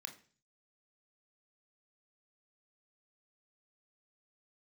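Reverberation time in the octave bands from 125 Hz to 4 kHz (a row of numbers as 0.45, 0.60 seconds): 0.75, 0.55, 0.45, 0.40, 0.45, 0.50 seconds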